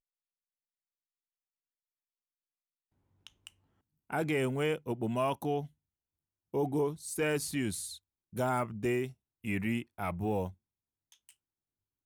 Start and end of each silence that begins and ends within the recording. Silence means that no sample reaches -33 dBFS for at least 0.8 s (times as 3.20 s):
5.61–6.54 s